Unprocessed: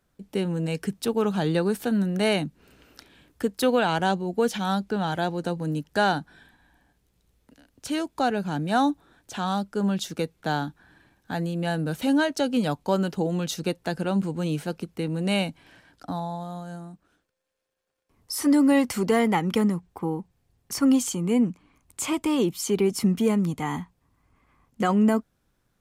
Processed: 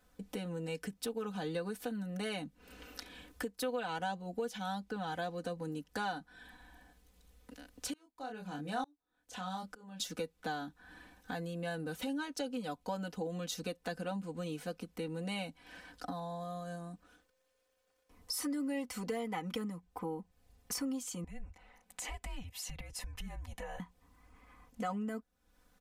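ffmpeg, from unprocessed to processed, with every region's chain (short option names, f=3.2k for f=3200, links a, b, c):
-filter_complex "[0:a]asettb=1/sr,asplit=3[a][b][c];[a]atrim=end=7.934[d];[b]atrim=start=7.93:end=10,asetpts=PTS-STARTPTS,afade=t=in:d=0.004:c=qsin,afade=t=out:st=2.066:d=0.004:c=qsin,asplit=2[e][f];[f]adelay=27,volume=-4dB[g];[e][g]amix=inputs=2:normalize=0,atrim=end_sample=91287,aeval=exprs='val(0)*pow(10,-32*if(lt(mod(-1.1*n/s,1),2*abs(-1.1)/1000),1-mod(-1.1*n/s,1)/(2*abs(-1.1)/1000),(mod(-1.1*n/s,1)-2*abs(-1.1)/1000)/(1-2*abs(-1.1)/1000))/20)':c=same[h];[c]atrim=start=9.996[i];[d][h]acrossfade=d=0.004:c1=hsin:c2=qsin[j];[j][i]acrossfade=d=0.004:c1=qsin:c2=hsin,asettb=1/sr,asplit=3[k][l][m];[k]atrim=end=21.244[n];[l]atrim=start=21.24:end=23.8,asetpts=PTS-STARTPTS,afade=t=in:d=0.004:c=qsin,afade=t=out:st=2.556:d=0.004:c=qsin,bass=f=250:g=-13,treble=f=4k:g=-6,acompressor=threshold=-45dB:ratio=2.5:attack=3.2:release=140:knee=1:detection=peak,afreqshift=-260[o];[m]atrim=start=23.796[p];[n][o]acrossfade=d=0.004:c1=hsin:c2=qsin[q];[q][p]acrossfade=d=0.004:c1=qsin:c2=hsin,aecho=1:1:4:0.95,acompressor=threshold=-41dB:ratio=3,equalizer=f=230:w=1.9:g=-5,volume=1dB"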